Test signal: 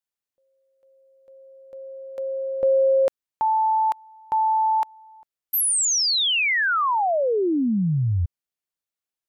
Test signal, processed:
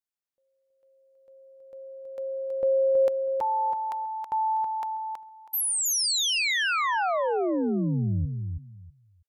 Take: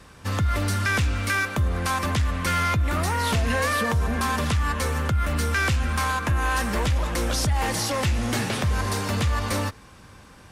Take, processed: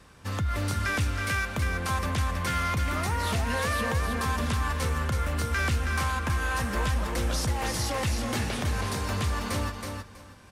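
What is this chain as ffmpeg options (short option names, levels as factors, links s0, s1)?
-af "aecho=1:1:323|646|969:0.562|0.112|0.0225,volume=0.531"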